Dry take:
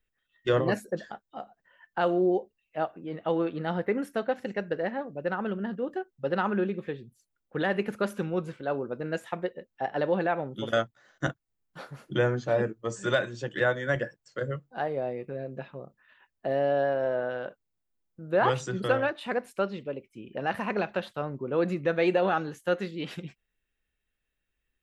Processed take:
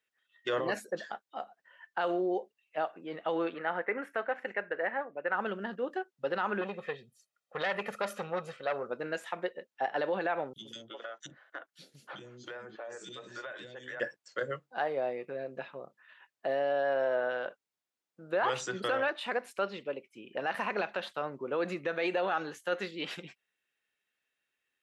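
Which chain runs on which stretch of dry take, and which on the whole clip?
3.54–5.35 HPF 410 Hz 6 dB/oct + resonant high shelf 3000 Hz -13 dB, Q 1.5 + mismatched tape noise reduction encoder only
6.61–8.9 comb 1.6 ms, depth 69% + core saturation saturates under 1200 Hz
10.53–14 three bands offset in time highs, lows, mids 30/320 ms, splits 340/3200 Hz + compressor 8:1, threshold -39 dBFS
whole clip: limiter -20.5 dBFS; weighting filter A; gain +1.5 dB

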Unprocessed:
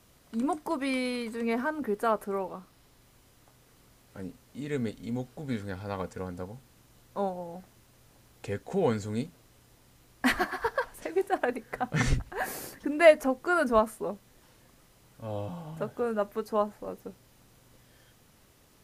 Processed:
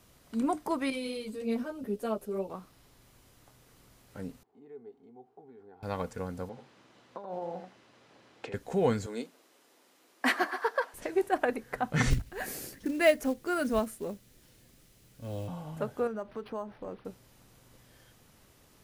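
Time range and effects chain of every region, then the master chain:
0.9–2.5 band shelf 1300 Hz -10 dB + ensemble effect
4.43–5.83 compressor 3:1, threshold -38 dBFS + double band-pass 560 Hz, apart 0.88 oct
6.49–8.54 negative-ratio compressor -38 dBFS + BPF 250–3800 Hz + echo 81 ms -8 dB
9.06–10.94 HPF 280 Hz 24 dB/oct + high shelf 7700 Hz -5 dB
12.1–15.48 bell 970 Hz -10.5 dB 1.4 oct + companded quantiser 6-bit
16.07–17.05 compressor 3:1, threshold -35 dBFS + decimation joined by straight lines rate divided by 6×
whole clip: dry

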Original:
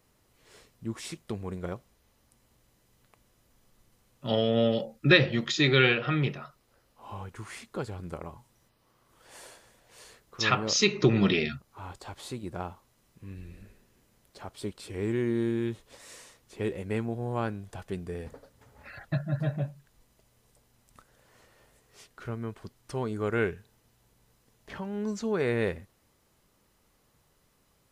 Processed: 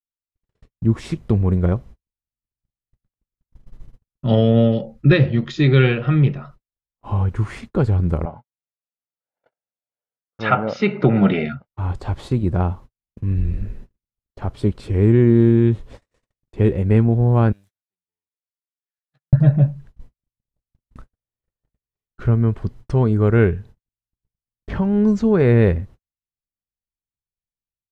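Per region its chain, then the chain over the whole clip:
8.25–11.68 BPF 290–2100 Hz + comb 1.4 ms, depth 58%
17.52–19.33 minimum comb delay 0.52 ms + differentiator
whole clip: RIAA curve playback; gate -45 dBFS, range -53 dB; AGC gain up to 11.5 dB; gain -1 dB

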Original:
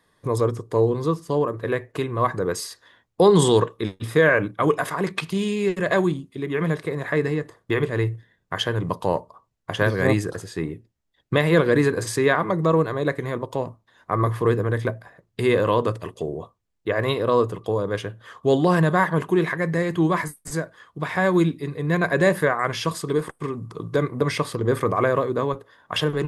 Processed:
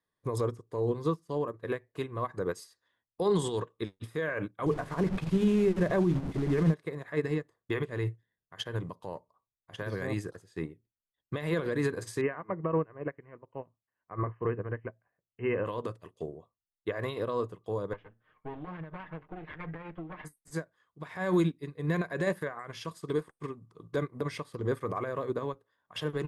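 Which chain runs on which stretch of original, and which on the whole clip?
4.66–6.74 delta modulation 64 kbps, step -27 dBFS + tilt -3.5 dB/oct + notches 50/100/150/200/250 Hz
12.21–15.66 brick-wall FIR low-pass 3100 Hz + upward expander, over -32 dBFS
17.93–20.25 minimum comb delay 6.5 ms + LPF 2700 Hz 24 dB/oct + compressor 20:1, threshold -24 dBFS
whole clip: limiter -16 dBFS; upward expander 2.5:1, over -35 dBFS

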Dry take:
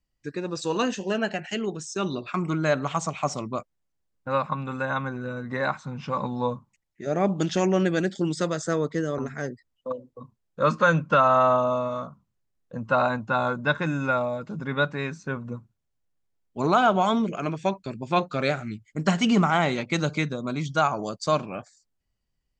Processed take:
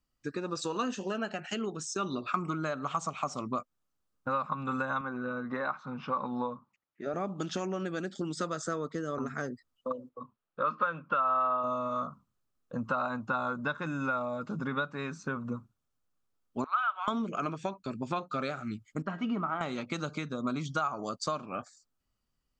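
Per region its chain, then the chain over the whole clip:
5.01–7.14 HPF 300 Hz 6 dB/oct + air absorption 210 m
10.09–11.64 LPF 3400 Hz 24 dB/oct + low shelf 240 Hz -11 dB
16.64–17.08 HPF 1300 Hz 24 dB/oct + air absorption 480 m
19.02–19.61 LPF 2000 Hz + resonator 320 Hz, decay 0.18 s, mix 70%
whole clip: low shelf 210 Hz -4 dB; compressor 6:1, threshold -32 dBFS; thirty-one-band EQ 250 Hz +5 dB, 1250 Hz +10 dB, 2000 Hz -5 dB

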